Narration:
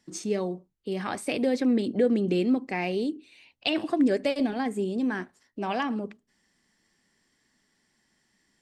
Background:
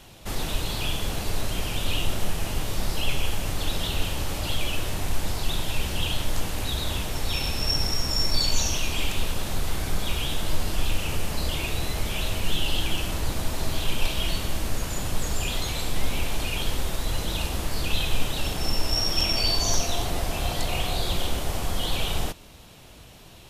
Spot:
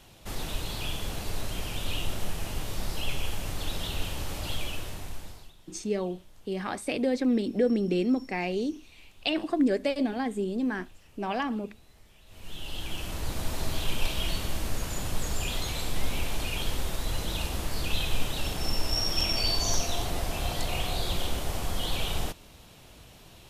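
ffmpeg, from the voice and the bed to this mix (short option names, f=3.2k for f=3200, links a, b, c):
-filter_complex "[0:a]adelay=5600,volume=-1.5dB[a];[1:a]volume=20.5dB,afade=t=out:st=4.55:d=0.98:silence=0.0630957,afade=t=in:st=12.26:d=1.26:silence=0.0501187[b];[a][b]amix=inputs=2:normalize=0"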